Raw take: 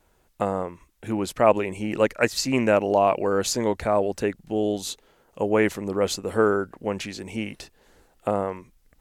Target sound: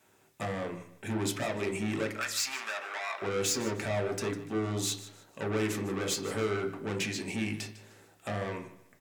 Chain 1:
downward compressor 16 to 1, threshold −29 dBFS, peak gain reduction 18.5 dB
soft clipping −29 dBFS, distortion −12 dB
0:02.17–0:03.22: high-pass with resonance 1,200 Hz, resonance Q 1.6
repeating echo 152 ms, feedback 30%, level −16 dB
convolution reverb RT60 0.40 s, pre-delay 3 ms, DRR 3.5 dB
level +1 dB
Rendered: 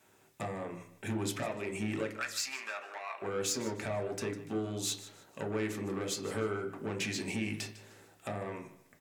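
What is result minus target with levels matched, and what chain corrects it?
downward compressor: peak gain reduction +9 dB
downward compressor 16 to 1, threshold −19.5 dBFS, peak gain reduction 9.5 dB
soft clipping −29 dBFS, distortion −6 dB
0:02.17–0:03.22: high-pass with resonance 1,200 Hz, resonance Q 1.6
repeating echo 152 ms, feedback 30%, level −16 dB
convolution reverb RT60 0.40 s, pre-delay 3 ms, DRR 3.5 dB
level +1 dB

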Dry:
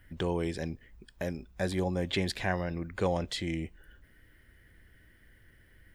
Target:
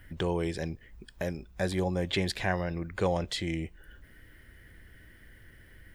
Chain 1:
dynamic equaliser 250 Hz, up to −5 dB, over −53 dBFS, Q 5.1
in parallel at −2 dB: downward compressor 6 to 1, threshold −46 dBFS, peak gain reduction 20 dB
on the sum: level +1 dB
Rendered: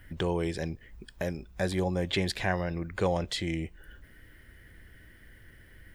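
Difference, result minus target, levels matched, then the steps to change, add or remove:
downward compressor: peak gain reduction −6 dB
change: downward compressor 6 to 1, threshold −53.5 dBFS, peak gain reduction 26.5 dB

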